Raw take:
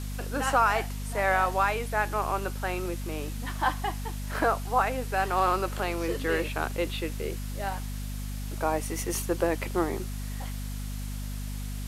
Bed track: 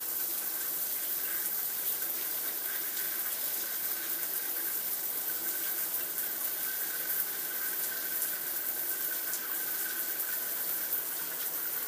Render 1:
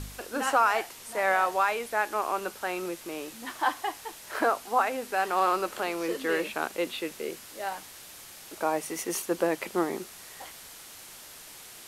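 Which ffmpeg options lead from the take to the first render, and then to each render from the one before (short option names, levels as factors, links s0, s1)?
-af "bandreject=f=50:t=h:w=4,bandreject=f=100:t=h:w=4,bandreject=f=150:t=h:w=4,bandreject=f=200:t=h:w=4,bandreject=f=250:t=h:w=4"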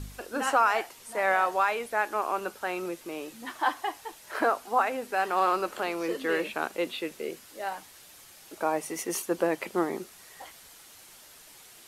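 -af "afftdn=nr=6:nf=-47"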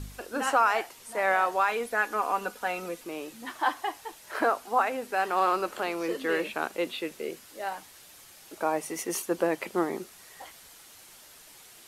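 -filter_complex "[0:a]asettb=1/sr,asplit=3[s0][s1][s2];[s0]atrim=end=1.694[s3];[s1]atrim=start=1.69:end=3.04,asetpts=PTS-STARTPTS,afade=t=in:d=0.004:c=qsin,afade=t=out:st=1.346:d=0.004:c=qsin,aecho=1:1:4.1:0.6,atrim=end_sample=59535[s4];[s2]atrim=start=3.036[s5];[s3][s4]acrossfade=d=0.004:c1=hsin:c2=qsin[s6];[s6][s5]acrossfade=d=0.004:c1=qsin:c2=hsin"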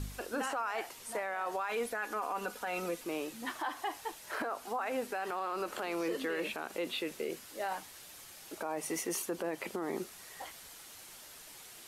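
-af "acompressor=threshold=0.0501:ratio=6,alimiter=level_in=1.33:limit=0.0631:level=0:latency=1:release=33,volume=0.75"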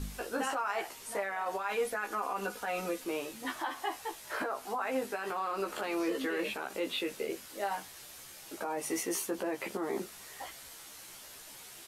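-filter_complex "[0:a]asplit=2[s0][s1];[s1]adelay=15,volume=0.708[s2];[s0][s2]amix=inputs=2:normalize=0"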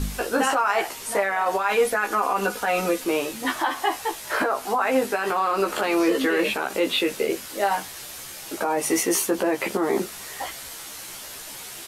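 -af "volume=3.98"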